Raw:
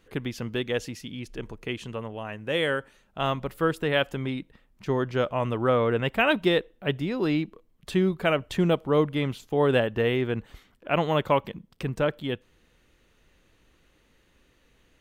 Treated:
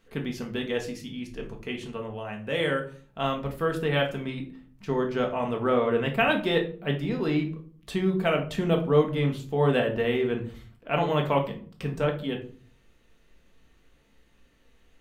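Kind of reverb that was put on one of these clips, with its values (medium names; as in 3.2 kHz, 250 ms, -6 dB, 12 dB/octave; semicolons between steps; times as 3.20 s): simulated room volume 350 m³, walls furnished, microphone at 1.6 m; trim -3.5 dB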